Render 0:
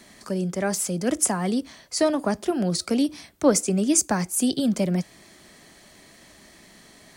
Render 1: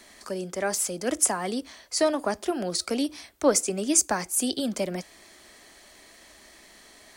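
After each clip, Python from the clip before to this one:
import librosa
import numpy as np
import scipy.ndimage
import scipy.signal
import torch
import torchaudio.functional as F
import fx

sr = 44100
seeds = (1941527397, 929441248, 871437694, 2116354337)

y = fx.peak_eq(x, sr, hz=150.0, db=-14.5, octaves=1.3)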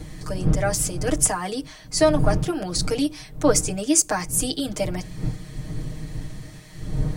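y = fx.dmg_wind(x, sr, seeds[0], corner_hz=120.0, level_db=-30.0)
y = y + 0.95 * np.pad(y, (int(6.5 * sr / 1000.0), 0))[:len(y)]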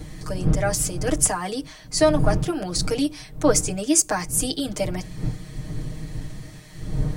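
y = fx.wow_flutter(x, sr, seeds[1], rate_hz=2.1, depth_cents=15.0)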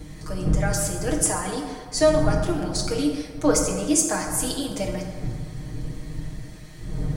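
y = fx.rev_plate(x, sr, seeds[2], rt60_s=1.7, hf_ratio=0.5, predelay_ms=0, drr_db=1.5)
y = y * librosa.db_to_amplitude(-3.5)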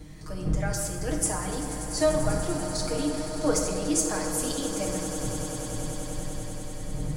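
y = fx.echo_swell(x, sr, ms=97, loudest=8, wet_db=-15)
y = y * librosa.db_to_amplitude(-5.5)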